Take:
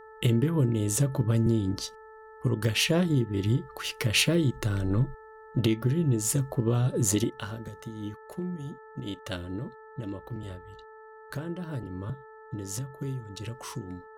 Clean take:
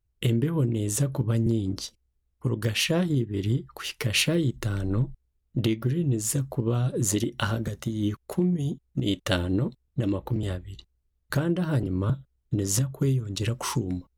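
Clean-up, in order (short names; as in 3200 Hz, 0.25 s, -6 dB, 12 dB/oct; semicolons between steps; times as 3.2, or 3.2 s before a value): de-hum 437.6 Hz, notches 4; gain 0 dB, from 7.3 s +10 dB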